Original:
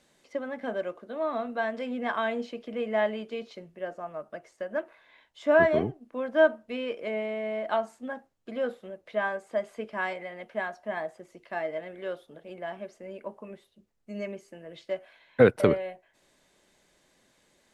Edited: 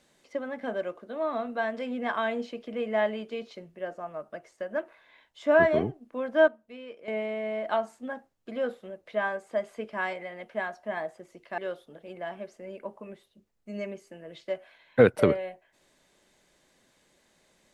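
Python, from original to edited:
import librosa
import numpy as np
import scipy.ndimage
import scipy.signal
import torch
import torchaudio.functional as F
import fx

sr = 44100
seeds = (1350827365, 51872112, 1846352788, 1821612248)

y = fx.edit(x, sr, fx.clip_gain(start_s=6.48, length_s=0.6, db=-10.5),
    fx.cut(start_s=11.58, length_s=0.41), tone=tone)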